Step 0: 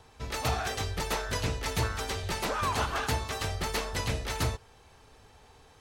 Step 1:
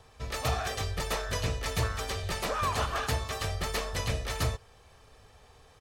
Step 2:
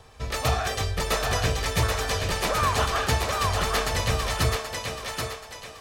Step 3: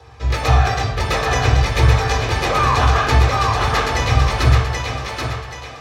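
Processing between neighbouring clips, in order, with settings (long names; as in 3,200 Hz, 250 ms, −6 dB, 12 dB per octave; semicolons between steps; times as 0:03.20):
comb filter 1.7 ms, depth 32%; level −1 dB
feedback echo with a high-pass in the loop 780 ms, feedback 39%, high-pass 260 Hz, level −3 dB; level +5.5 dB
convolution reverb RT60 1.1 s, pre-delay 3 ms, DRR −2.5 dB; level −1 dB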